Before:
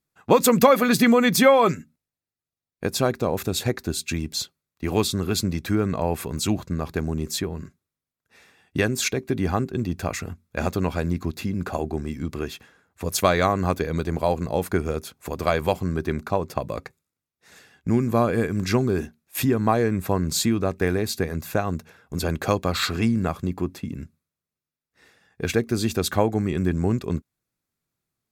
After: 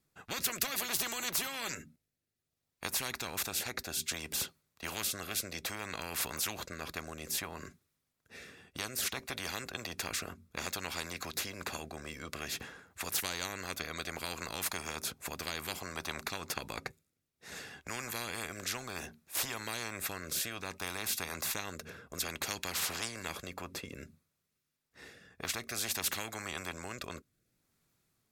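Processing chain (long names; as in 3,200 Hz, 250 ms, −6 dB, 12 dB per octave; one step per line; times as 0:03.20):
rotating-speaker cabinet horn 0.6 Hz
every bin compressed towards the loudest bin 10 to 1
level −5 dB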